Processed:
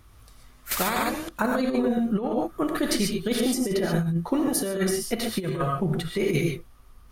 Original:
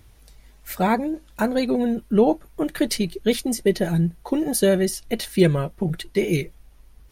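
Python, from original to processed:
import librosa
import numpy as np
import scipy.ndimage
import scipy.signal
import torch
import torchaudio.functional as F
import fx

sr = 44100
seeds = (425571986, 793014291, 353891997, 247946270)

y = fx.peak_eq(x, sr, hz=1200.0, db=12.0, octaves=0.41)
y = fx.rev_gated(y, sr, seeds[0], gate_ms=160, shape='rising', drr_db=2.0)
y = fx.over_compress(y, sr, threshold_db=-18.0, ratio=-0.5)
y = fx.spectral_comp(y, sr, ratio=2.0, at=(0.71, 1.29))
y = y * 10.0 ** (-4.5 / 20.0)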